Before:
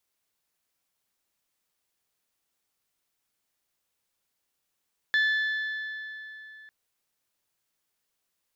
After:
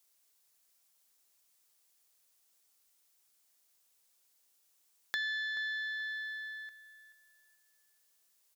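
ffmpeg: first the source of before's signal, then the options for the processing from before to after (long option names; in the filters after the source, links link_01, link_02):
-f lavfi -i "aevalsrc='0.1*pow(10,-3*t/3.4)*sin(2*PI*1740*t)+0.0316*pow(10,-3*t/2.762)*sin(2*PI*3480*t)+0.01*pow(10,-3*t/2.615)*sin(2*PI*4176*t)+0.00316*pow(10,-3*t/2.445)*sin(2*PI*5220*t)+0.001*pow(10,-3*t/2.243)*sin(2*PI*6960*t)':duration=1.55:sample_rate=44100"
-filter_complex "[0:a]bass=frequency=250:gain=-8,treble=frequency=4000:gain=9,acompressor=threshold=-39dB:ratio=2.5,asplit=2[link_01][link_02];[link_02]adelay=431,lowpass=frequency=2000:poles=1,volume=-13.5dB,asplit=2[link_03][link_04];[link_04]adelay=431,lowpass=frequency=2000:poles=1,volume=0.38,asplit=2[link_05][link_06];[link_06]adelay=431,lowpass=frequency=2000:poles=1,volume=0.38,asplit=2[link_07][link_08];[link_08]adelay=431,lowpass=frequency=2000:poles=1,volume=0.38[link_09];[link_01][link_03][link_05][link_07][link_09]amix=inputs=5:normalize=0"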